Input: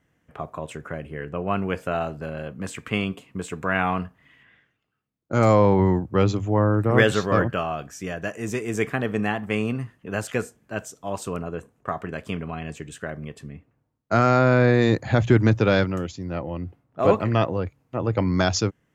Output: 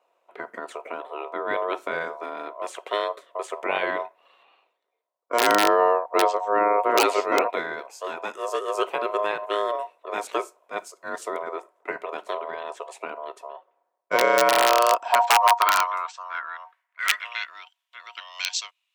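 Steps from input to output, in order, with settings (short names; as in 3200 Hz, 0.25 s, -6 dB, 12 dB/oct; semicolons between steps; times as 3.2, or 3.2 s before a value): ring modulator 830 Hz; wrapped overs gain 8.5 dB; high-pass sweep 450 Hz -> 3000 Hz, 14.21–17.69; gain -1 dB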